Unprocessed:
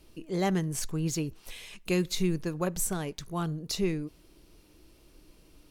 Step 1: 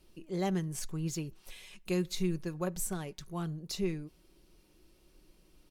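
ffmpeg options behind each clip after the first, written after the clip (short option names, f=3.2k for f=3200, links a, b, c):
-af "aecho=1:1:5.4:0.37,volume=-6.5dB"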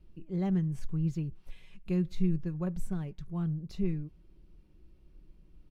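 -af "bass=f=250:g=15,treble=f=4k:g=-13,volume=-6.5dB"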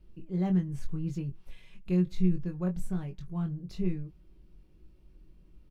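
-filter_complex "[0:a]asplit=2[a][b];[b]adelay=22,volume=-5.5dB[c];[a][c]amix=inputs=2:normalize=0"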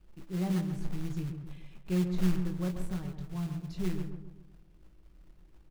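-filter_complex "[0:a]acrossover=split=1300[a][b];[a]acrusher=bits=4:mode=log:mix=0:aa=0.000001[c];[c][b]amix=inputs=2:normalize=0,asplit=2[d][e];[e]adelay=134,lowpass=f=1.2k:p=1,volume=-6dB,asplit=2[f][g];[g]adelay=134,lowpass=f=1.2k:p=1,volume=0.48,asplit=2[h][i];[i]adelay=134,lowpass=f=1.2k:p=1,volume=0.48,asplit=2[j][k];[k]adelay=134,lowpass=f=1.2k:p=1,volume=0.48,asplit=2[l][m];[m]adelay=134,lowpass=f=1.2k:p=1,volume=0.48,asplit=2[n][o];[o]adelay=134,lowpass=f=1.2k:p=1,volume=0.48[p];[d][f][h][j][l][n][p]amix=inputs=7:normalize=0,volume=-3dB"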